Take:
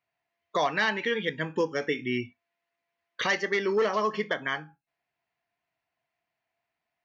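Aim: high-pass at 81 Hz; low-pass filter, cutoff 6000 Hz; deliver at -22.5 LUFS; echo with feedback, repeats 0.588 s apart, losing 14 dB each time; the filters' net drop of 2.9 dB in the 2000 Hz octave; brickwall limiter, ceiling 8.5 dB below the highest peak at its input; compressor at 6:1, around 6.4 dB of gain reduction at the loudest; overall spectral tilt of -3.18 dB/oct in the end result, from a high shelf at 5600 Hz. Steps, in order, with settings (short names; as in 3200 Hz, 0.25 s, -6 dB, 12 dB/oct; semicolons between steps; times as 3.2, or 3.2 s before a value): HPF 81 Hz; LPF 6000 Hz; bell 2000 Hz -3 dB; high shelf 5600 Hz -4 dB; compressor 6:1, threshold -28 dBFS; limiter -27 dBFS; feedback echo 0.588 s, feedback 20%, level -14 dB; gain +15 dB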